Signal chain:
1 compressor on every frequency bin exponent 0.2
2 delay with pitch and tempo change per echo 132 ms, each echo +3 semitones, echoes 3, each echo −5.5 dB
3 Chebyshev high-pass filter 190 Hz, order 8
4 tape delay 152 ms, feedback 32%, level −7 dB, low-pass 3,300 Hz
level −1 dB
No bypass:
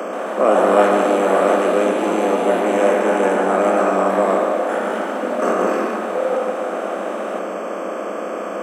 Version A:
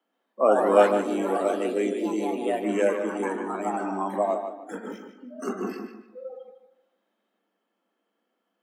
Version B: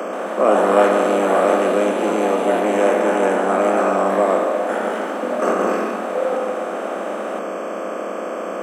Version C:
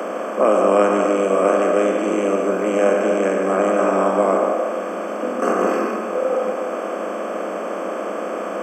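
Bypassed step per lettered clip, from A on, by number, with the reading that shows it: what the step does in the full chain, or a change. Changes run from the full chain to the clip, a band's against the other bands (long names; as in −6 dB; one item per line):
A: 1, 250 Hz band +3.0 dB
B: 4, echo-to-direct ratio −8.5 dB to none audible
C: 2, 2 kHz band −2.0 dB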